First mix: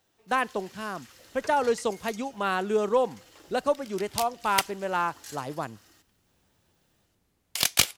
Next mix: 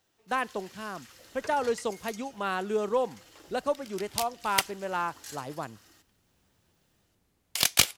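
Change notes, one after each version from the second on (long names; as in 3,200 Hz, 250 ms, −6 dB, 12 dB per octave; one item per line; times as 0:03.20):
speech −3.5 dB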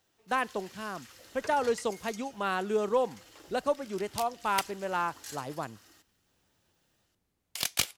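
second sound −7.0 dB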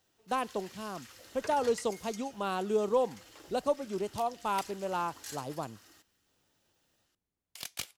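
speech: add parametric band 1,800 Hz −12 dB 0.77 octaves
second sound −10.5 dB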